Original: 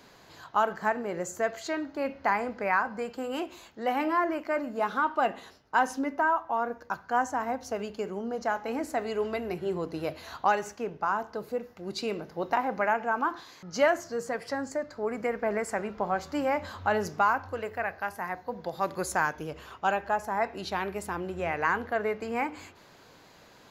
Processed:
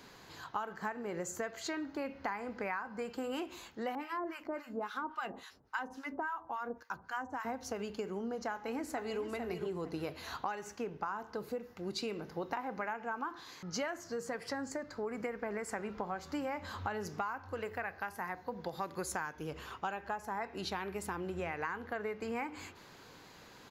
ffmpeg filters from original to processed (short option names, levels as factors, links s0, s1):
-filter_complex "[0:a]asettb=1/sr,asplit=3[s0][s1][s2];[s0]atrim=end=3.954[s3];[s1]atrim=start=3.95:end=7.45,asetpts=PTS-STARTPTS,afade=t=in:d=0.004:c=qsin,afade=t=out:st=3.496:d=0.004:c=qsin,acrossover=split=1000[s4][s5];[s4]aeval=exprs='val(0)*(1-1/2+1/2*cos(2*PI*3.6*n/s))':c=same[s6];[s5]aeval=exprs='val(0)*(1-1/2-1/2*cos(2*PI*3.6*n/s))':c=same[s7];[s6][s7]amix=inputs=2:normalize=0[s8];[s2]atrim=start=7.446[s9];[s3][s8]acrossfade=d=0.004:c1=hsin:c2=qsin[s10];[s10][s9]acrossfade=d=0.004:c1=qsin:c2=hsin,asplit=2[s11][s12];[s12]afade=t=in:st=8.51:d=0.01,afade=t=out:st=9.21:d=0.01,aecho=0:1:450|900|1350:0.398107|0.0796214|0.0159243[s13];[s11][s13]amix=inputs=2:normalize=0,equalizer=f=630:t=o:w=0.37:g=-6,acompressor=threshold=0.0178:ratio=6"